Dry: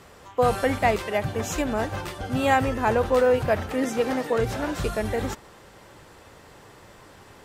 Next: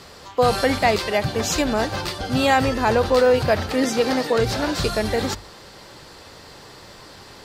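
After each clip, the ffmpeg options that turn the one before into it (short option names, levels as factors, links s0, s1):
-filter_complex "[0:a]equalizer=f=4500:t=o:w=0.67:g=12,bandreject=f=50:t=h:w=6,bandreject=f=100:t=h:w=6,asplit=2[s0][s1];[s1]alimiter=limit=0.168:level=0:latency=1,volume=0.708[s2];[s0][s2]amix=inputs=2:normalize=0"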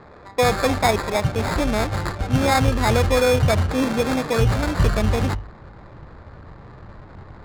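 -af "asubboost=boost=4:cutoff=170,acrusher=samples=15:mix=1:aa=0.000001,adynamicsmooth=sensitivity=5:basefreq=1300"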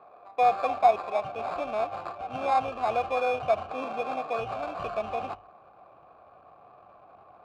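-filter_complex "[0:a]asplit=3[s0][s1][s2];[s0]bandpass=f=730:t=q:w=8,volume=1[s3];[s1]bandpass=f=1090:t=q:w=8,volume=0.501[s4];[s2]bandpass=f=2440:t=q:w=8,volume=0.355[s5];[s3][s4][s5]amix=inputs=3:normalize=0,volume=1.41"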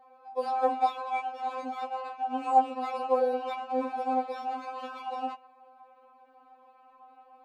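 -af "afftfilt=real='re*3.46*eq(mod(b,12),0)':imag='im*3.46*eq(mod(b,12),0)':win_size=2048:overlap=0.75"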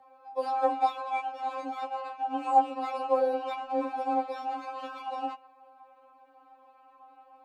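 -af "afreqshift=13"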